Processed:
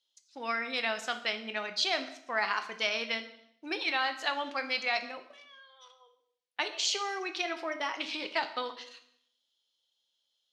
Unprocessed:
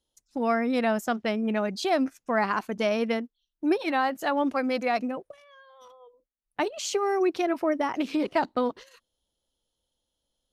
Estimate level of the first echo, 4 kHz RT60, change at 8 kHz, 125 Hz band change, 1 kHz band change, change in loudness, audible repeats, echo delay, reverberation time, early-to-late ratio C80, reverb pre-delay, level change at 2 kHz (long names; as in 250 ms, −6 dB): no echo audible, 0.65 s, −0.5 dB, can't be measured, −6.5 dB, −5.0 dB, no echo audible, no echo audible, 0.65 s, 15.0 dB, 3 ms, +1.0 dB